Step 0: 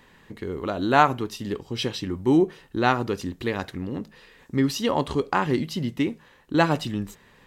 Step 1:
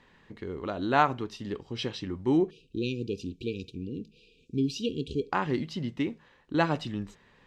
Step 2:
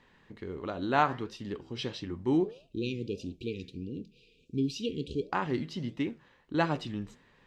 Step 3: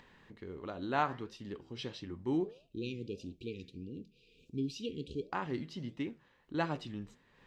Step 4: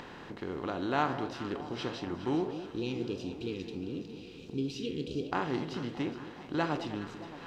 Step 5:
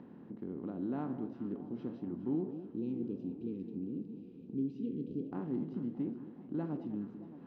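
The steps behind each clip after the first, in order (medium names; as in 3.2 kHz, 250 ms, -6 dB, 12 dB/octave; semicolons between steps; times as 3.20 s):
low-pass 5.6 kHz 12 dB/octave; spectral selection erased 2.50–5.31 s, 510–2300 Hz; trim -5.5 dB
flange 1.5 Hz, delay 6.3 ms, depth 7.8 ms, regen -85%; trim +2 dB
upward compressor, threshold -47 dBFS; trim -6 dB
spectral levelling over time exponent 0.6; echo whose repeats swap between lows and highs 207 ms, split 1 kHz, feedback 79%, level -11 dB
band-pass filter 220 Hz, Q 2.5; trim +3 dB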